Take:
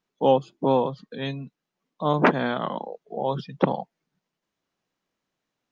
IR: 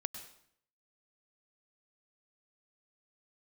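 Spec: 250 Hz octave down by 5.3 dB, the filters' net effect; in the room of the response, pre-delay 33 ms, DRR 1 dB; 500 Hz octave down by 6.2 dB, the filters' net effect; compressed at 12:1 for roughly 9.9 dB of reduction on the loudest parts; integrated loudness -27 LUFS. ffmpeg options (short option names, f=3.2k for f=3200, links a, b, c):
-filter_complex "[0:a]equalizer=f=250:t=o:g=-5,equalizer=f=500:t=o:g=-6,acompressor=threshold=-26dB:ratio=12,asplit=2[a][b];[1:a]atrim=start_sample=2205,adelay=33[c];[b][c]afir=irnorm=-1:irlink=0,volume=-0.5dB[d];[a][d]amix=inputs=2:normalize=0,volume=5dB"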